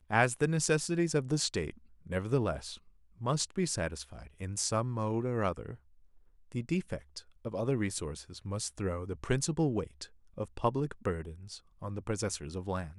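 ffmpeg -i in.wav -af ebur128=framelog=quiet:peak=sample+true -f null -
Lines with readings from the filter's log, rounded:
Integrated loudness:
  I:         -33.7 LUFS
  Threshold: -44.2 LUFS
Loudness range:
  LRA:         4.2 LU
  Threshold: -54.9 LUFS
  LRA low:   -36.9 LUFS
  LRA high:  -32.7 LUFS
Sample peak:
  Peak:      -11.2 dBFS
True peak:
  Peak:      -11.2 dBFS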